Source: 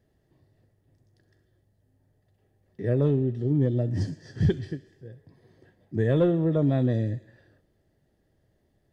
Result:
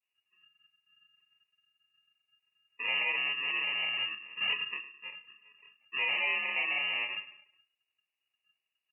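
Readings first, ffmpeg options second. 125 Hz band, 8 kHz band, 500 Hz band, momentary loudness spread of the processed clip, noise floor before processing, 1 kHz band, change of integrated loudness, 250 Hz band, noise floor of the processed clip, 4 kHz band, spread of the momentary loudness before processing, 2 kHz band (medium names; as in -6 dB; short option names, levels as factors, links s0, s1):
under -40 dB, no reading, -22.5 dB, 14 LU, -70 dBFS, +2.0 dB, -5.0 dB, -32.5 dB, under -85 dBFS, +17.5 dB, 11 LU, +15.5 dB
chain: -filter_complex "[0:a]afreqshift=88,aecho=1:1:105|210|315:0.168|0.052|0.0161,acrossover=split=260|430|1700[s0][s1][s2][s3];[s1]acompressor=threshold=0.00891:ratio=6[s4];[s0][s4][s2][s3]amix=inputs=4:normalize=0,asplit=2[s5][s6];[s6]adelay=28,volume=0.708[s7];[s5][s7]amix=inputs=2:normalize=0,volume=20,asoftclip=hard,volume=0.0501,adynamicequalizer=threshold=0.00794:dfrequency=220:dqfactor=2:tfrequency=220:tqfactor=2:attack=5:release=100:ratio=0.375:range=2.5:mode=cutabove:tftype=bell,afftdn=nr=20:nf=-48,acrusher=samples=29:mix=1:aa=0.000001,bandreject=f=83.17:t=h:w=4,bandreject=f=166.34:t=h:w=4,bandreject=f=249.51:t=h:w=4,bandreject=f=332.68:t=h:w=4,bandreject=f=415.85:t=h:w=4,bandreject=f=499.02:t=h:w=4,bandreject=f=582.19:t=h:w=4,bandreject=f=665.36:t=h:w=4,bandreject=f=748.53:t=h:w=4,bandreject=f=831.7:t=h:w=4,bandreject=f=914.87:t=h:w=4,lowpass=f=2600:t=q:w=0.5098,lowpass=f=2600:t=q:w=0.6013,lowpass=f=2600:t=q:w=0.9,lowpass=f=2600:t=q:w=2.563,afreqshift=-3000,volume=0.841" -ar 48000 -c:a libopus -b:a 96k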